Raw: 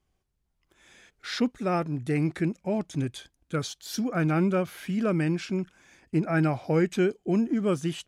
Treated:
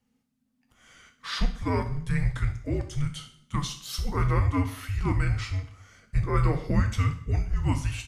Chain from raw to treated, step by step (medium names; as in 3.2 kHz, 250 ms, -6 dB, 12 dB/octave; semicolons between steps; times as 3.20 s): feedback delay 63 ms, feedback 49%, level -17 dB; two-slope reverb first 0.44 s, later 1.6 s, from -25 dB, DRR 4.5 dB; frequency shift -280 Hz